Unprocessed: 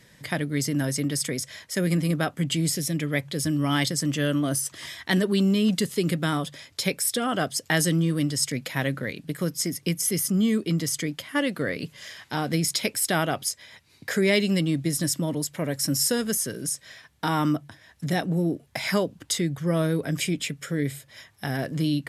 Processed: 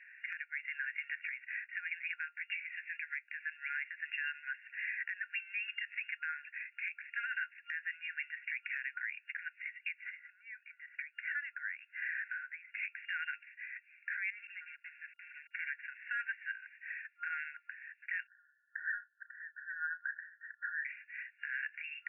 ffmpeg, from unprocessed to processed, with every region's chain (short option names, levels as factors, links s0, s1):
-filter_complex "[0:a]asettb=1/sr,asplit=3[s0][s1][s2];[s0]atrim=end=10.064[s3];[s1]atrim=start=10.06:end=12.74,asetpts=PTS-STARTPTS,afade=t=in:d=0.004:c=qsin,afade=t=out:st=2.676:d=0.004:c=qsin,lowpass=1000,acompressor=mode=upward:threshold=0.0562:ratio=2.5:attack=3.2:release=140:knee=2.83:detection=peak[s4];[s2]atrim=start=12.736[s5];[s3][s4]acrossfade=d=0.004:c1=hsin:c2=qsin[s6];[s6][s5]acrossfade=d=0.004:c1=qsin:c2=hsin,asettb=1/sr,asplit=3[s7][s8][s9];[s7]atrim=end=14.304[s10];[s8]atrim=start=14.3:end=15.51,asetpts=PTS-STARTPTS,afade=t=in:d=0.004:c=qsin,afade=t=out:st=1.206:d=0.004:c=qsin,agate=range=0.398:threshold=0.0631:ratio=16:release=100:detection=peak,acompressor=threshold=0.02:ratio=12:attack=3.2:release=140:knee=1:detection=peak,acrusher=bits=6:mix=0:aa=0.5[s11];[s9]atrim=start=15.506[s12];[s10][s11]acrossfade=d=0.004:c1=hsin:c2=qsin[s13];[s13][s12]acrossfade=d=0.004:c1=qsin:c2=hsin,asettb=1/sr,asplit=3[s14][s15][s16];[s14]atrim=end=18.274[s17];[s15]atrim=start=18.27:end=20.85,asetpts=PTS-STARTPTS,afade=t=in:d=0.004:c=qsin,afade=t=out:st=2.576:d=0.004:c=qsin,asuperstop=centerf=2400:order=20:qfactor=1.9,asplit=2[s18][s19];[s19]adelay=34,volume=0.224[s20];[s18][s20]amix=inputs=2:normalize=0,atrim=end_sample=113778[s21];[s16]atrim=start=20.846[s22];[s17][s21]acrossfade=d=0.004:c1=hsin:c2=qsin[s23];[s23][s22]acrossfade=d=0.004:c1=qsin:c2=hsin,afftfilt=real='re*between(b*sr/4096,1400,2800)':imag='im*between(b*sr/4096,1400,2800)':win_size=4096:overlap=0.75,acompressor=threshold=0.02:ratio=6,alimiter=level_in=2.66:limit=0.0631:level=0:latency=1:release=139,volume=0.376,volume=1.68"